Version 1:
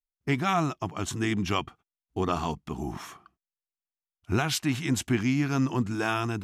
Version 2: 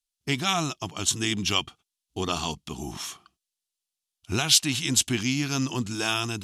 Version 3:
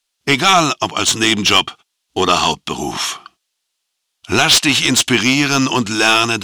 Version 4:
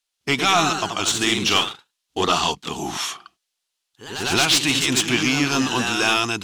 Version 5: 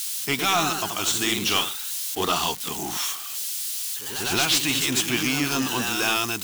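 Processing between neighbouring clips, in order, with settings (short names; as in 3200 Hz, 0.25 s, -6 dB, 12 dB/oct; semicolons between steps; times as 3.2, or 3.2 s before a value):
band shelf 5700 Hz +14 dB 2.4 oct; gain -2 dB
overdrive pedal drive 21 dB, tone 2900 Hz, clips at -3 dBFS; gain +5.5 dB
echoes that change speed 0.126 s, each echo +1 st, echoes 3, each echo -6 dB; gain -7 dB
switching spikes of -19 dBFS; gain -4.5 dB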